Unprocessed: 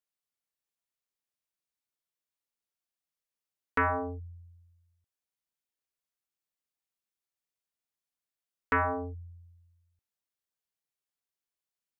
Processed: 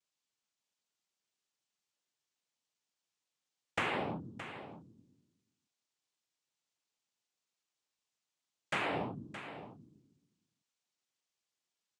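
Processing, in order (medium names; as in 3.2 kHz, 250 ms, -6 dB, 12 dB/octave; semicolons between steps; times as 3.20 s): compression 10:1, threshold -36 dBFS, peak gain reduction 12.5 dB; noise-vocoded speech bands 4; delay 619 ms -12 dB; trim +4 dB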